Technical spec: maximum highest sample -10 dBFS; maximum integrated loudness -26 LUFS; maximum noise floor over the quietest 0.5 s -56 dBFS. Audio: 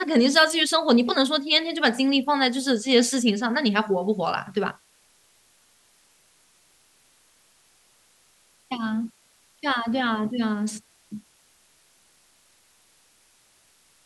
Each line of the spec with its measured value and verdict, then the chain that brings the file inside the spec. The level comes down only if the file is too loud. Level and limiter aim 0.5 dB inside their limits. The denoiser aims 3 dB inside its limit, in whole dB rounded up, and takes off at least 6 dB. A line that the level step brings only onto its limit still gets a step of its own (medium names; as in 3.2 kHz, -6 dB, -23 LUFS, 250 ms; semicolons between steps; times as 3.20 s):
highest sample -3.5 dBFS: fail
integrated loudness -22.5 LUFS: fail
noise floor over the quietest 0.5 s -61 dBFS: pass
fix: trim -4 dB; peak limiter -10.5 dBFS